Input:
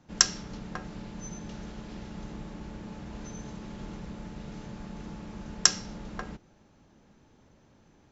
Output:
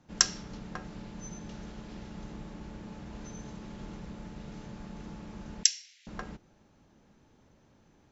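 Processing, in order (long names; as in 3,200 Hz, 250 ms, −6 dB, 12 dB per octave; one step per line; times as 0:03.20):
0:05.63–0:06.07: Butterworth high-pass 2,000 Hz 48 dB per octave
level −2.5 dB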